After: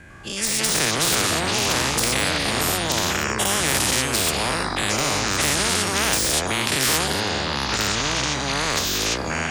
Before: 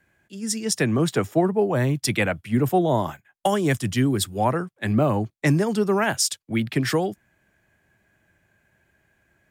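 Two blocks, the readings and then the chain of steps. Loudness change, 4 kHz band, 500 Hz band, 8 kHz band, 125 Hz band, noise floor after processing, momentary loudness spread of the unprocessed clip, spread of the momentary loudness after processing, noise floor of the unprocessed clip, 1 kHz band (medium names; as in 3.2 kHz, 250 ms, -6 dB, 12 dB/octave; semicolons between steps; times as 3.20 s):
+2.5 dB, +12.5 dB, -3.0 dB, +10.5 dB, -4.0 dB, -27 dBFS, 6 LU, 4 LU, -72 dBFS, +3.0 dB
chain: every event in the spectrogram widened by 120 ms; low-pass 11 kHz 24 dB/octave; de-esser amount 45%; bass shelf 160 Hz +6.5 dB; level rider gain up to 13.5 dB; ever faster or slower copies 100 ms, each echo -6 st, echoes 2; spectrum-flattening compressor 4:1; trim -4.5 dB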